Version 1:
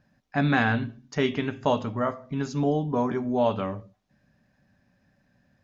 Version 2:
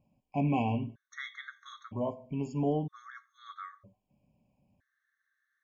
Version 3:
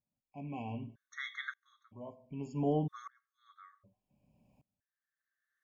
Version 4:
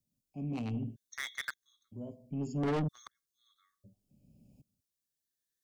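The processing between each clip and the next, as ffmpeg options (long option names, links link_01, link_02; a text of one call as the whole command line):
ffmpeg -i in.wav -af "equalizer=frequency=4800:width_type=o:width=0.6:gain=-11.5,afftfilt=real='re*gt(sin(2*PI*0.52*pts/sr)*(1-2*mod(floor(b*sr/1024/1100),2)),0)':imag='im*gt(sin(2*PI*0.52*pts/sr)*(1-2*mod(floor(b*sr/1024/1100),2)),0)':win_size=1024:overlap=0.75,volume=-5dB" out.wav
ffmpeg -i in.wav -af "aeval=exprs='val(0)*pow(10,-29*if(lt(mod(-0.65*n/s,1),2*abs(-0.65)/1000),1-mod(-0.65*n/s,1)/(2*abs(-0.65)/1000),(mod(-0.65*n/s,1)-2*abs(-0.65)/1000)/(1-2*abs(-0.65)/1000))/20)':channel_layout=same,volume=5.5dB" out.wav
ffmpeg -i in.wav -filter_complex "[0:a]acrossover=split=180|500|3400[link_01][link_02][link_03][link_04];[link_03]acrusher=bits=5:mix=0:aa=0.5[link_05];[link_01][link_02][link_05][link_04]amix=inputs=4:normalize=0,asoftclip=type=tanh:threshold=-36.5dB,volume=8dB" out.wav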